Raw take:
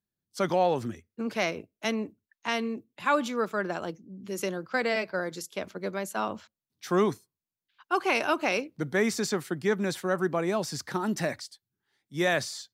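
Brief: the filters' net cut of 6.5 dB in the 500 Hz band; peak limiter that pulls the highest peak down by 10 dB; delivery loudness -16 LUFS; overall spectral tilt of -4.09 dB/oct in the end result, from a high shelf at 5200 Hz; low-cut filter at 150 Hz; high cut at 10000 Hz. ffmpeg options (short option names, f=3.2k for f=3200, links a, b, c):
-af "highpass=150,lowpass=10k,equalizer=f=500:t=o:g=-8.5,highshelf=f=5.2k:g=-3.5,volume=21dB,alimiter=limit=-4.5dB:level=0:latency=1"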